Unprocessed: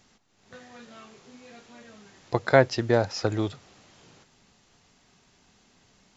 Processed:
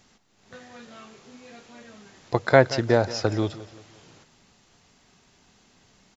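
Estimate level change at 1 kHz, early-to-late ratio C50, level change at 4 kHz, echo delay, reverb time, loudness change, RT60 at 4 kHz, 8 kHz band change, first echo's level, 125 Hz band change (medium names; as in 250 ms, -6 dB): +2.0 dB, no reverb, +2.0 dB, 176 ms, no reverb, +2.0 dB, no reverb, no reading, -17.0 dB, +2.0 dB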